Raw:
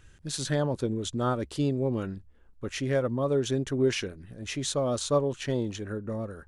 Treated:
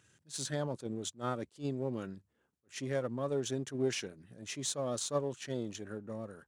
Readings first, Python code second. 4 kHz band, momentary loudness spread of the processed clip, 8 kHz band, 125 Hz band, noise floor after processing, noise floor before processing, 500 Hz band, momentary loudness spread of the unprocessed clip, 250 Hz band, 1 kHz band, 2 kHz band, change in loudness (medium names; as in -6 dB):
-6.5 dB, 10 LU, -3.0 dB, -10.0 dB, -78 dBFS, -56 dBFS, -8.0 dB, 10 LU, -9.0 dB, -7.5 dB, -7.5 dB, -8.0 dB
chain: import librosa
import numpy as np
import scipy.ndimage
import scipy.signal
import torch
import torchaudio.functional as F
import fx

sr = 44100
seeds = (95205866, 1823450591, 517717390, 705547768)

y = np.where(x < 0.0, 10.0 ** (-3.0 / 20.0) * x, x)
y = scipy.signal.sosfilt(scipy.signal.butter(4, 110.0, 'highpass', fs=sr, output='sos'), y)
y = fx.peak_eq(y, sr, hz=7400.0, db=6.0, octaves=1.2)
y = fx.attack_slew(y, sr, db_per_s=280.0)
y = y * 10.0 ** (-6.5 / 20.0)